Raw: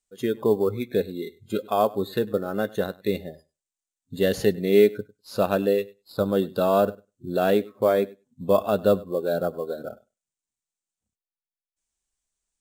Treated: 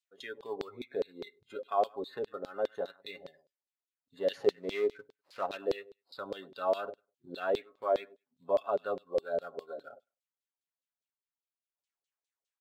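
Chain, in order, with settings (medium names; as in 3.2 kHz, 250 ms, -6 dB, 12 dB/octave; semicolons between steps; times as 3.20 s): 4.43–5.57 s: dead-time distortion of 0.082 ms; in parallel at -2 dB: compression, threshold -32 dBFS, peak gain reduction 18.5 dB; on the sum: comb 7.2 ms, depth 46%; LFO band-pass saw down 4.9 Hz 440–4300 Hz; trim -5 dB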